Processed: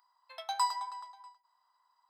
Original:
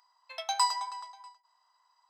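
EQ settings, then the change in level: fifteen-band graphic EQ 630 Hz -4 dB, 2.5 kHz -8 dB, 6.3 kHz -12 dB; -1.0 dB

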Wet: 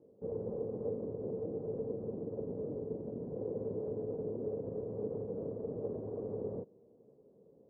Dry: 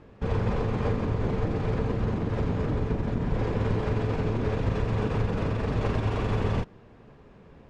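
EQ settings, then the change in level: high-pass 170 Hz 12 dB/octave; four-pole ladder low-pass 560 Hz, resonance 55%; -3.0 dB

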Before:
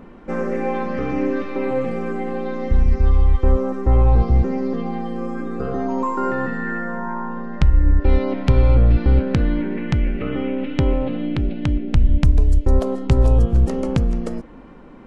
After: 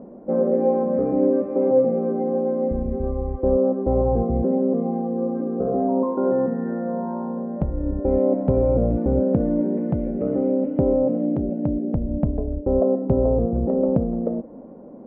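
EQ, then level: high-pass 150 Hz 6 dB/octave; resonant low-pass 600 Hz, resonance Q 3.6; peaking EQ 220 Hz +7 dB 0.83 oct; -3.5 dB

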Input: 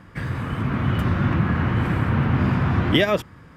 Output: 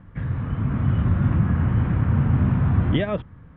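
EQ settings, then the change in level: Chebyshev low-pass 3.5 kHz, order 4; tilt EQ -3 dB/octave; peaking EQ 350 Hz -4 dB 0.49 oct; -6.5 dB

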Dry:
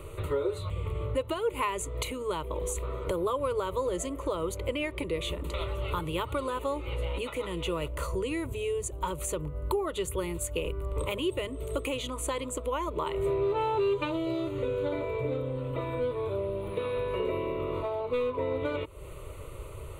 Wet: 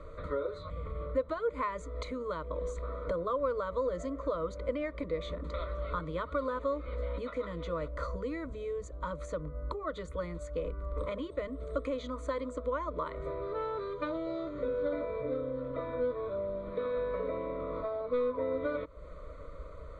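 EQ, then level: low-pass 4.7 kHz 24 dB/octave; static phaser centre 560 Hz, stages 8; 0.0 dB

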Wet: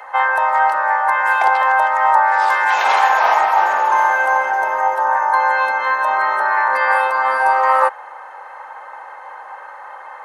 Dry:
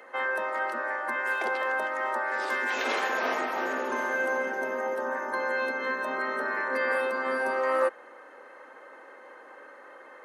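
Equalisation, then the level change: resonant high-pass 850 Hz, resonance Q 4.9; +8.5 dB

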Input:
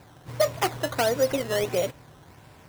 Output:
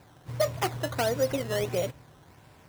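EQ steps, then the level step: dynamic bell 100 Hz, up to +7 dB, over -46 dBFS, Q 0.81; -4.0 dB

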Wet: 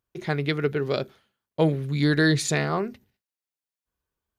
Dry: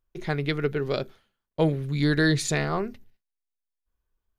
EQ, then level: high-pass 82 Hz 12 dB/octave; +1.5 dB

